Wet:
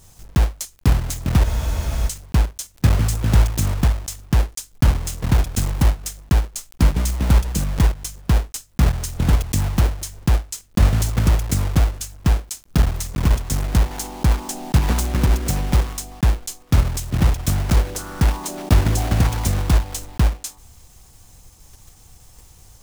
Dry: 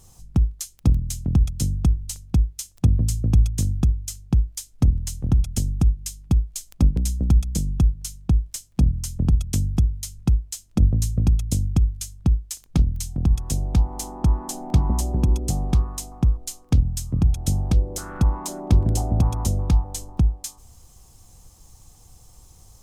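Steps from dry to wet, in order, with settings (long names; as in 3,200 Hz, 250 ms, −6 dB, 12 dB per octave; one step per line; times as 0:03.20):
one scale factor per block 3 bits
frozen spectrum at 0:01.46, 0.61 s
level +2 dB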